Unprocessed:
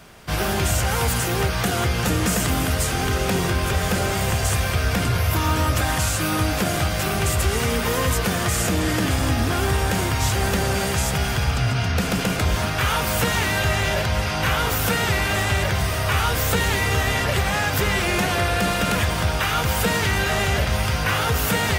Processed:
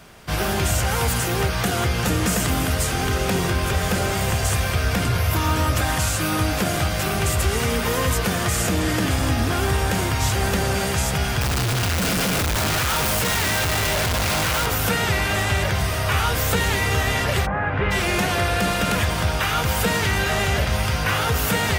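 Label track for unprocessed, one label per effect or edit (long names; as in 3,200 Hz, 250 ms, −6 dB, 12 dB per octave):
11.410000	14.660000	sign of each sample alone
17.450000	17.900000	low-pass filter 1,400 Hz → 2,900 Hz 24 dB per octave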